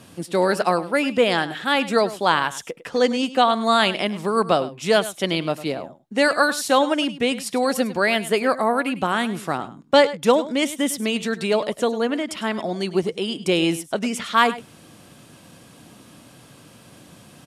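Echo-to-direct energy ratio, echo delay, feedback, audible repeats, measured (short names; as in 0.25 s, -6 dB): -15.5 dB, 0.102 s, no steady repeat, 1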